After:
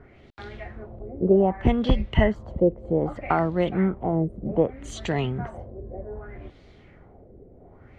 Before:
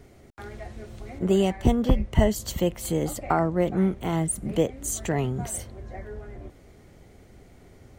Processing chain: LFO low-pass sine 0.64 Hz 450–4000 Hz

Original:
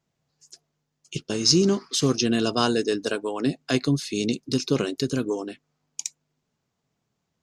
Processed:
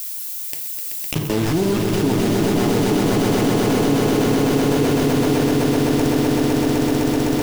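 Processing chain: comb filter that takes the minimum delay 0.38 ms; low-pass that closes with the level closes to 1.5 kHz, closed at -23.5 dBFS; treble shelf 2 kHz -8 dB; in parallel at -6 dB: hard clipper -23 dBFS, distortion -8 dB; on the sum: bit crusher 5-bit; added noise violet -55 dBFS; on a send: echo with a slow build-up 127 ms, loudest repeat 8, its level -4.5 dB; on the sum: FDN reverb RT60 0.48 s, low-frequency decay 0.9×, high-frequency decay 0.65×, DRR 6 dB; level flattener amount 70%; trim -5 dB

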